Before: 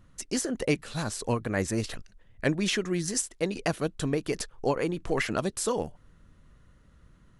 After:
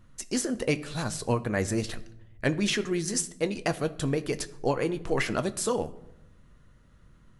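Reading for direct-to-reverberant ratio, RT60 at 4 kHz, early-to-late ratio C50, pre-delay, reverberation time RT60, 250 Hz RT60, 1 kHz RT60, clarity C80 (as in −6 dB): 10.5 dB, 0.50 s, 17.5 dB, 8 ms, 0.85 s, 1.3 s, 0.75 s, 19.5 dB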